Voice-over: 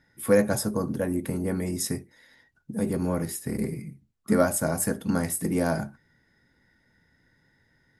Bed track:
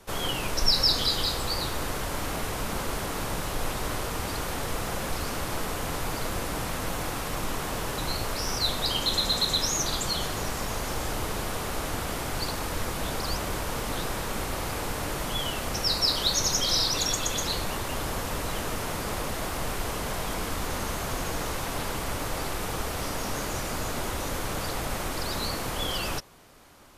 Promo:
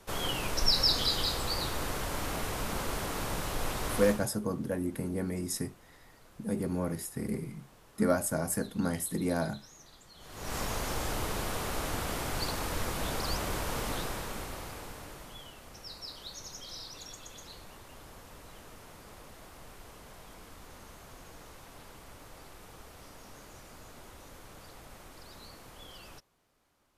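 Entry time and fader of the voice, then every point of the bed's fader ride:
3.70 s, −5.5 dB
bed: 0:04.10 −3.5 dB
0:04.32 −27.5 dB
0:10.13 −27.5 dB
0:10.55 −3 dB
0:13.87 −3 dB
0:15.56 −19.5 dB

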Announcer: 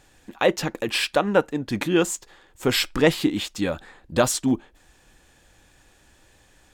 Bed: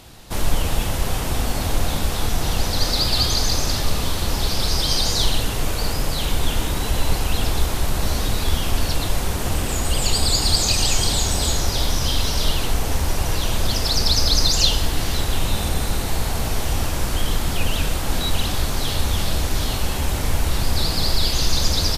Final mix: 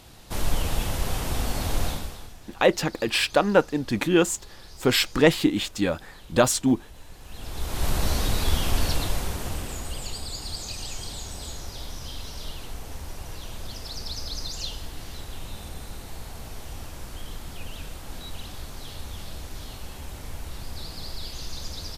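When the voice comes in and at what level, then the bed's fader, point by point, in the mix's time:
2.20 s, +0.5 dB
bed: 0:01.87 −5 dB
0:02.38 −26 dB
0:07.15 −26 dB
0:07.87 −3 dB
0:08.89 −3 dB
0:10.26 −16 dB

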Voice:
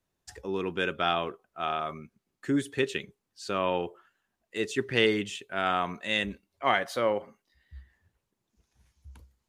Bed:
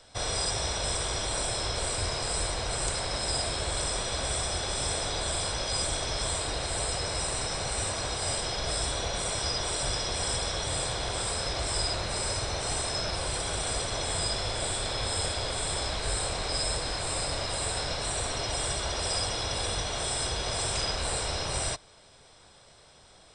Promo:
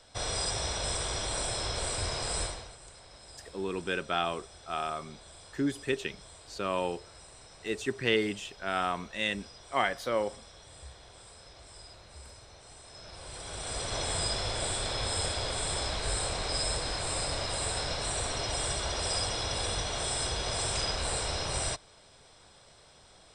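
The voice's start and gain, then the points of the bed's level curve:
3.10 s, −3.0 dB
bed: 0:02.43 −2.5 dB
0:02.78 −21 dB
0:12.80 −21 dB
0:13.96 −1.5 dB

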